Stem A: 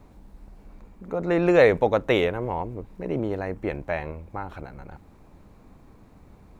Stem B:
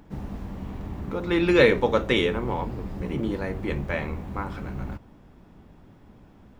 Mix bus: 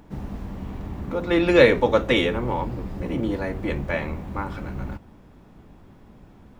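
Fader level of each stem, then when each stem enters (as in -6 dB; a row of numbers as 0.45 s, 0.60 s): -5.5 dB, +1.5 dB; 0.00 s, 0.00 s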